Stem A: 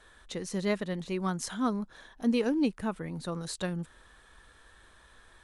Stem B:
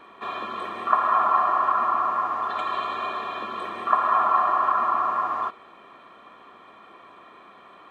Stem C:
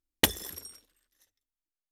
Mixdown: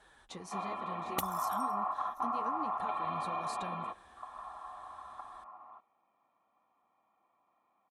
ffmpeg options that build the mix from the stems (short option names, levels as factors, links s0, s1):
-filter_complex "[0:a]acompressor=threshold=0.0112:ratio=5,flanger=delay=4.6:depth=7.6:regen=-26:speed=1.1:shape=triangular,volume=0.841,asplit=2[s0][s1];[1:a]lowpass=3000,adelay=300,volume=0.422[s2];[2:a]highshelf=f=10000:g=6.5,adelay=950,volume=0.596[s3];[s1]apad=whole_len=361623[s4];[s2][s4]sidechaingate=range=0.1:threshold=0.00158:ratio=16:detection=peak[s5];[s5][s3]amix=inputs=2:normalize=0,equalizer=f=400:t=o:w=0.33:g=-11,equalizer=f=1600:t=o:w=0.33:g=-12,equalizer=f=3150:t=o:w=0.33:g=-5,equalizer=f=5000:t=o:w=0.33:g=-4,acompressor=threshold=0.0224:ratio=10,volume=1[s6];[s0][s6]amix=inputs=2:normalize=0,highpass=43,equalizer=f=810:t=o:w=0.35:g=10.5"